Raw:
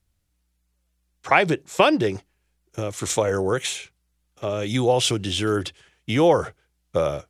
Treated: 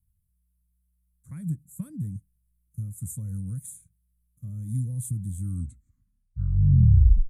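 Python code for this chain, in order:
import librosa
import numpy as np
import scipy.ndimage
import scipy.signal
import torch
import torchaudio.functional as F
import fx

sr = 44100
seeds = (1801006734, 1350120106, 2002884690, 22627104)

y = fx.tape_stop_end(x, sr, length_s=2.0)
y = scipy.signal.sosfilt(scipy.signal.cheby2(4, 40, [360.0, 5600.0], 'bandstop', fs=sr, output='sos'), y)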